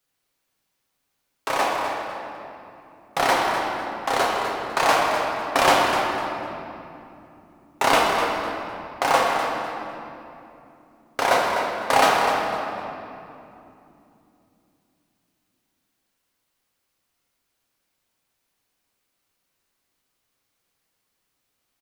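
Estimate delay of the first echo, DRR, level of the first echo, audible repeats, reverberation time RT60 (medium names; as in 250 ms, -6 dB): 251 ms, -3.0 dB, -9.0 dB, 1, 2.9 s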